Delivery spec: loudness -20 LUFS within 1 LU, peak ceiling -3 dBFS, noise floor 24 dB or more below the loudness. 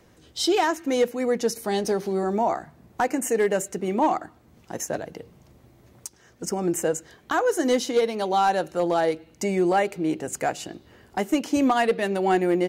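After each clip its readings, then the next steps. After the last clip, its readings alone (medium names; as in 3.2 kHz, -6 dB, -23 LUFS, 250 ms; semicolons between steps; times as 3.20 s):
clipped samples 0.2%; clipping level -13.5 dBFS; loudness -24.5 LUFS; peak level -13.5 dBFS; loudness target -20.0 LUFS
-> clip repair -13.5 dBFS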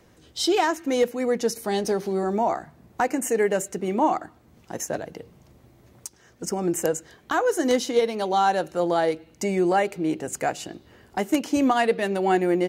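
clipped samples 0.0%; loudness -24.5 LUFS; peak level -4.5 dBFS; loudness target -20.0 LUFS
-> trim +4.5 dB; peak limiter -3 dBFS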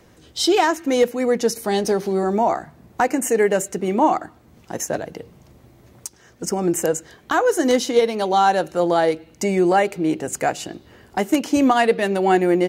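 loudness -20.0 LUFS; peak level -3.0 dBFS; noise floor -52 dBFS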